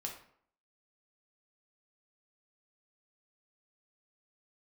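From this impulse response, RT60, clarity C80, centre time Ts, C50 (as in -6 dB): 0.60 s, 10.5 dB, 24 ms, 6.5 dB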